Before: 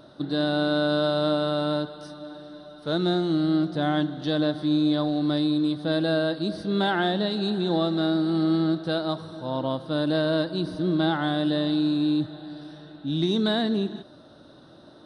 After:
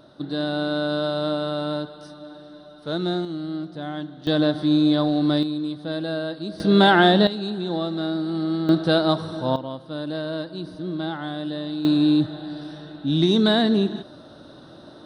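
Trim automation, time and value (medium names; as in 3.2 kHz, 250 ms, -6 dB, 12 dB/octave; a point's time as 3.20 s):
-1 dB
from 3.25 s -7 dB
from 4.27 s +4 dB
from 5.43 s -3.5 dB
from 6.60 s +9 dB
from 7.27 s -2 dB
from 8.69 s +7.5 dB
from 9.56 s -5 dB
from 11.85 s +5.5 dB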